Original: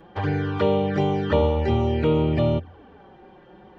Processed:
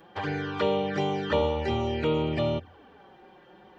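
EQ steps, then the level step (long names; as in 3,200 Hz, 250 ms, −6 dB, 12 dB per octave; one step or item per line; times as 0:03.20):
spectral tilt +2 dB per octave
mains-hum notches 50/100 Hz
−2.5 dB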